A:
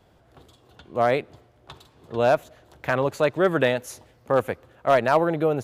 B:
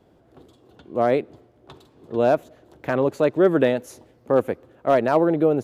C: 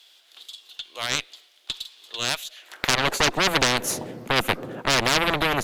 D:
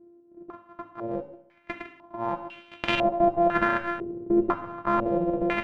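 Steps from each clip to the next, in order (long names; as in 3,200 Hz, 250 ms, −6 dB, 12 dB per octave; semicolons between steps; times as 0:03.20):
parametric band 310 Hz +11.5 dB 2 octaves; level −5 dB
high-pass filter sweep 3,500 Hz → 170 Hz, 0:02.53–0:03.48; harmonic generator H 8 −13 dB, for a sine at −3.5 dBFS; every bin compressed towards the loudest bin 4 to 1
samples sorted by size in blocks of 128 samples; convolution reverb RT60 0.65 s, pre-delay 4 ms, DRR 5 dB; low-pass on a step sequencer 2 Hz 390–2,800 Hz; level −7.5 dB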